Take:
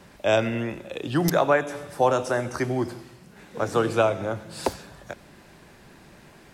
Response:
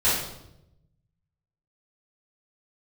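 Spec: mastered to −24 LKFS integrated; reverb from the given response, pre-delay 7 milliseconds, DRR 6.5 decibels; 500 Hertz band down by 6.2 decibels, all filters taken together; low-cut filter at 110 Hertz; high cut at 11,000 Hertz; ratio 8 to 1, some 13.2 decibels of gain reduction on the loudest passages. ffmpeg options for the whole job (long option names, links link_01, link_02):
-filter_complex "[0:a]highpass=110,lowpass=11000,equalizer=frequency=500:width_type=o:gain=-8,acompressor=threshold=-33dB:ratio=8,asplit=2[link_01][link_02];[1:a]atrim=start_sample=2205,adelay=7[link_03];[link_02][link_03]afir=irnorm=-1:irlink=0,volume=-21.5dB[link_04];[link_01][link_04]amix=inputs=2:normalize=0,volume=13.5dB"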